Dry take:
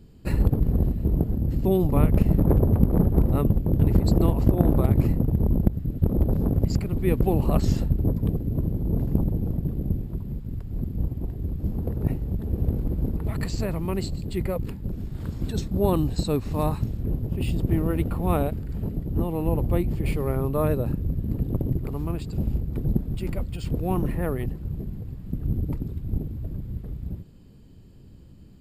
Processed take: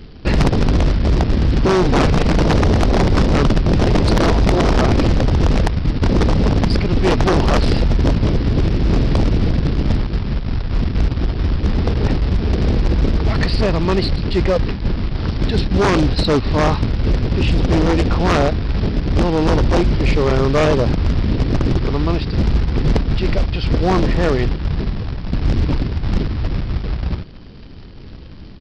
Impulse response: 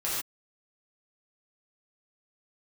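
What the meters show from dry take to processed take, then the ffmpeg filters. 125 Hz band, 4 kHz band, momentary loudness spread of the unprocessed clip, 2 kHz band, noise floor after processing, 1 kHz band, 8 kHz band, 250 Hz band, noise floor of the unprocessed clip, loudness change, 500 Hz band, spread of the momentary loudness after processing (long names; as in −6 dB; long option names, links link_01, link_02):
+6.5 dB, +19.0 dB, 11 LU, +19.0 dB, −34 dBFS, +13.0 dB, +10.0 dB, +7.5 dB, −47 dBFS, +8.0 dB, +10.0 dB, 7 LU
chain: -af "equalizer=frequency=140:width=0.66:gain=-6,aresample=11025,acrusher=bits=3:mode=log:mix=0:aa=0.000001,aresample=44100,aeval=exprs='0.501*sin(PI/2*5.62*val(0)/0.501)':channel_layout=same,volume=-3.5dB"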